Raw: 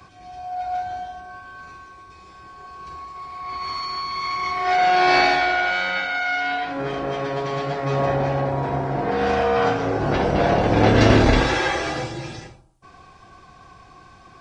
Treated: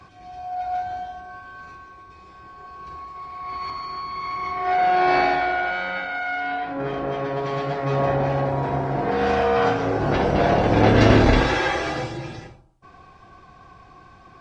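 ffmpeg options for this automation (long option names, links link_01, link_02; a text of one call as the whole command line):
ffmpeg -i in.wav -af "asetnsamples=nb_out_samples=441:pad=0,asendcmd='1.75 lowpass f 2800;3.7 lowpass f 1300;6.8 lowpass f 2100;7.43 lowpass f 3700;8.3 lowpass f 7200;10.81 lowpass f 4700;12.17 lowpass f 2800',lowpass=frequency=4200:poles=1" out.wav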